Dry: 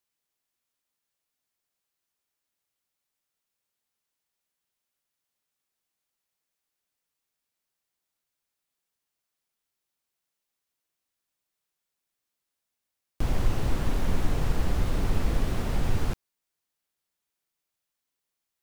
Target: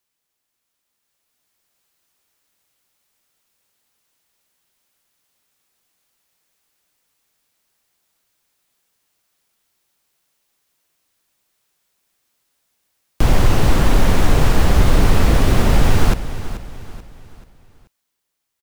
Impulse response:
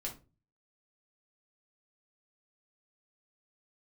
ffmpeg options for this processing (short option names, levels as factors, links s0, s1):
-filter_complex "[0:a]acrossover=split=500|670[s0][s1][s2];[s0]alimiter=limit=0.1:level=0:latency=1[s3];[s3][s1][s2]amix=inputs=3:normalize=0,dynaudnorm=f=120:g=21:m=2.51,aecho=1:1:434|868|1302|1736:0.211|0.0867|0.0355|0.0146,volume=2.24"